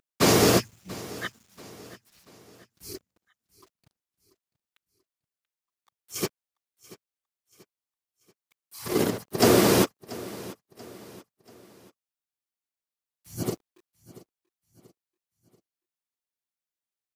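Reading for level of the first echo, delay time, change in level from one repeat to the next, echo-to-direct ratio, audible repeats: -19.0 dB, 0.685 s, -7.5 dB, -18.0 dB, 3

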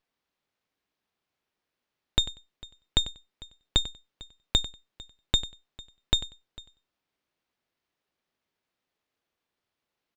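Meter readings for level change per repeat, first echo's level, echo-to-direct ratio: -16.0 dB, -15.0 dB, -15.0 dB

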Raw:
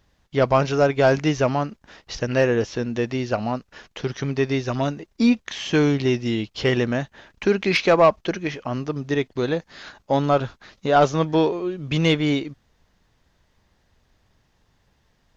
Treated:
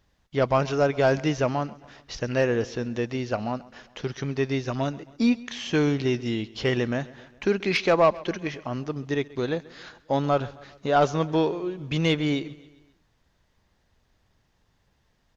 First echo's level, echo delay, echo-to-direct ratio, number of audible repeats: -21.0 dB, 0.134 s, -19.5 dB, 3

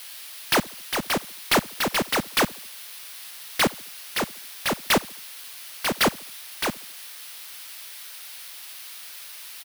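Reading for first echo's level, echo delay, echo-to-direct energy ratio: -24.0 dB, 72 ms, -23.0 dB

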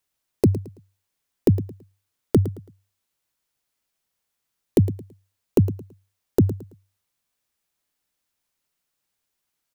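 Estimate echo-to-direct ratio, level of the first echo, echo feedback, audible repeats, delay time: -13.5 dB, -14.0 dB, 29%, 2, 0.11 s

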